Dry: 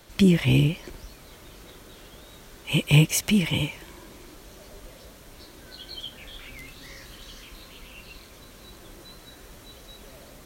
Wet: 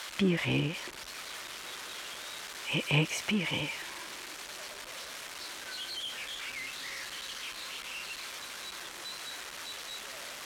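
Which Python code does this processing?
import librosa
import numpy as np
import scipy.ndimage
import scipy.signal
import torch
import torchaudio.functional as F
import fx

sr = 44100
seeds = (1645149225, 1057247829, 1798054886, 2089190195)

y = x + 0.5 * 10.0 ** (-18.0 / 20.0) * np.diff(np.sign(x), prepend=np.sign(x[:1]))
y = scipy.signal.sosfilt(scipy.signal.butter(2, 1400.0, 'lowpass', fs=sr, output='sos'), y)
y = fx.tilt_eq(y, sr, slope=4.5)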